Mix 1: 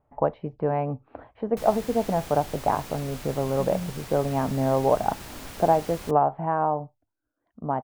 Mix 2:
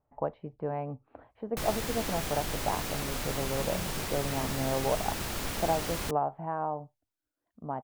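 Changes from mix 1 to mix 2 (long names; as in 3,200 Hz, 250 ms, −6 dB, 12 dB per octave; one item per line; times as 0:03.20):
speech −8.5 dB
background +6.0 dB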